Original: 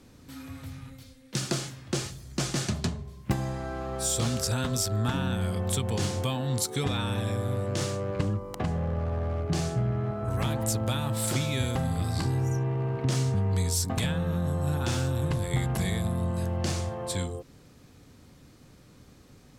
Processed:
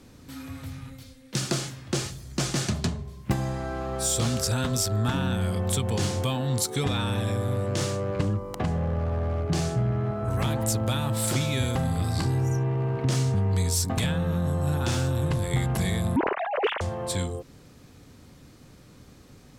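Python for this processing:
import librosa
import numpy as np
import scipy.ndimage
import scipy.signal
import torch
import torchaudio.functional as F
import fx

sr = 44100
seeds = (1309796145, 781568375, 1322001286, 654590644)

p1 = fx.sine_speech(x, sr, at=(16.16, 16.81))
p2 = 10.0 ** (-25.5 / 20.0) * np.tanh(p1 / 10.0 ** (-25.5 / 20.0))
y = p1 + (p2 * 10.0 ** (-7.5 / 20.0))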